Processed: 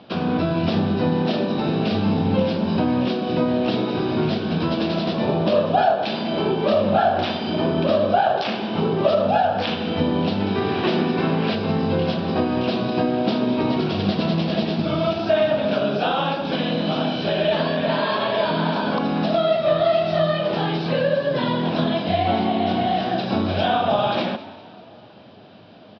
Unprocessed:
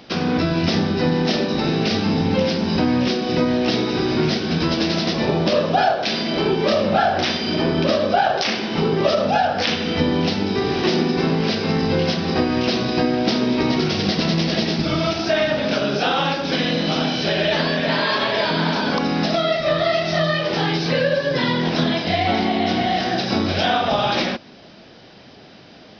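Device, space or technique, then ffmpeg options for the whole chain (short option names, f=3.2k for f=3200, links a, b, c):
frequency-shifting delay pedal into a guitar cabinet: -filter_complex "[0:a]asplit=5[a][b][c][d][e];[b]adelay=199,afreqshift=36,volume=-16.5dB[f];[c]adelay=398,afreqshift=72,volume=-23.4dB[g];[d]adelay=597,afreqshift=108,volume=-30.4dB[h];[e]adelay=796,afreqshift=144,volume=-37.3dB[i];[a][f][g][h][i]amix=inputs=5:normalize=0,highpass=100,equalizer=f=100:t=q:w=4:g=9,equalizer=f=200:t=q:w=4:g=4,equalizer=f=640:t=q:w=4:g=5,equalizer=f=1k:t=q:w=4:g=3,equalizer=f=2k:t=q:w=4:g=-9,lowpass=f=3.8k:w=0.5412,lowpass=f=3.8k:w=1.3066,asettb=1/sr,asplit=3[j][k][l];[j]atrim=end=10.404[m];[k]atrim=start=10.4:end=11.56,asetpts=PTS-STARTPTS,afade=t=in:d=0.004:c=qsin,afade=t=out:st=1.156:d=0.004:c=qsin,equalizer=f=1.9k:t=o:w=1.4:g=5.5[n];[l]atrim=start=11.556[o];[m][n]acrossfade=d=0.004:c1=hsin:c2=qsin[p];[p][o]acrossfade=d=0.004:c1=qsin:c2=hsin,asplit=2[q][r];[r]adelay=991.3,volume=-29dB,highshelf=f=4k:g=-22.3[s];[q][s]amix=inputs=2:normalize=0,volume=-3dB"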